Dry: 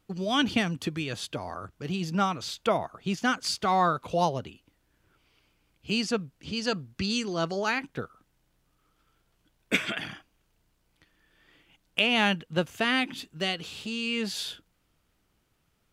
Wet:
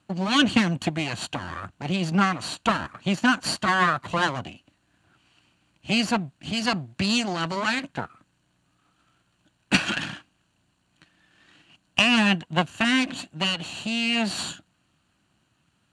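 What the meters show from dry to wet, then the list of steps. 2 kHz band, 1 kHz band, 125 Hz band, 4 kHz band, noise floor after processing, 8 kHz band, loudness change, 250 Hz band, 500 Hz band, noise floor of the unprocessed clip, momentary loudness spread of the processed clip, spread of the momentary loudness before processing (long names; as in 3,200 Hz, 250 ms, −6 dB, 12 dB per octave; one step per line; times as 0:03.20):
+5.5 dB, +2.5 dB, +5.0 dB, +4.5 dB, −70 dBFS, +5.0 dB, +4.5 dB, +6.0 dB, −1.0 dB, −72 dBFS, 13 LU, 13 LU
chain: lower of the sound and its delayed copy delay 0.71 ms
loudspeaker in its box 110–8,700 Hz, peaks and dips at 440 Hz −10 dB, 710 Hz +6 dB, 1,300 Hz −4 dB, 5,400 Hz −9 dB
level +8 dB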